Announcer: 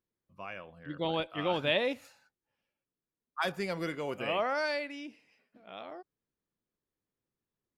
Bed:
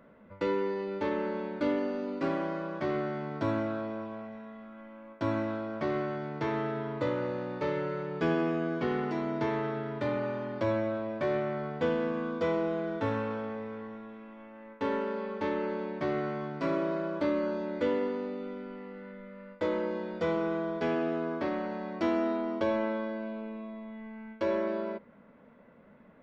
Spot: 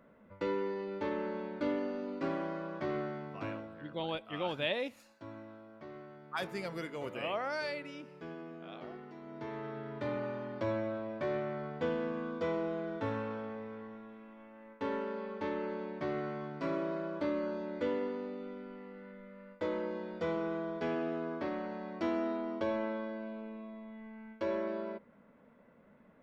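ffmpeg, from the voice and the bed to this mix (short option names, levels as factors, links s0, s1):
-filter_complex "[0:a]adelay=2950,volume=0.562[s0];[1:a]volume=2.51,afade=t=out:st=3.01:d=0.73:silence=0.223872,afade=t=in:st=9.2:d=0.91:silence=0.237137[s1];[s0][s1]amix=inputs=2:normalize=0"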